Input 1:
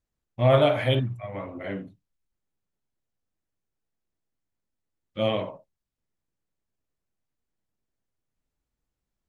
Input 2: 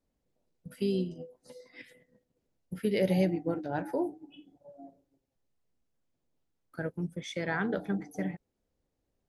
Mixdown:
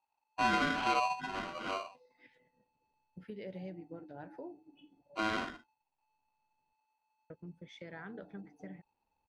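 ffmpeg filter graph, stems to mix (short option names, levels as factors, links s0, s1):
-filter_complex "[0:a]alimiter=limit=0.141:level=0:latency=1:release=205,lowshelf=f=140:g=7.5,aeval=exprs='val(0)*sgn(sin(2*PI*870*n/s))':c=same,volume=0.501,asplit=2[s0][s1];[1:a]acompressor=threshold=0.00794:ratio=2,adelay=450,volume=0.422,asplit=3[s2][s3][s4];[s2]atrim=end=6.73,asetpts=PTS-STARTPTS,afade=t=out:st=6.726:d=0.004:c=hsin[s5];[s3]atrim=start=6.73:end=7.3,asetpts=PTS-STARTPTS,volume=0[s6];[s4]atrim=start=7.3,asetpts=PTS-STARTPTS,afade=t=in:d=0.004:c=hsin[s7];[s5][s6][s7]concat=n=3:v=0:a=1[s8];[s1]apad=whole_len=429096[s9];[s8][s9]sidechaincompress=threshold=0.00891:ratio=8:attack=7.4:release=1190[s10];[s0][s10]amix=inputs=2:normalize=0,lowpass=3800"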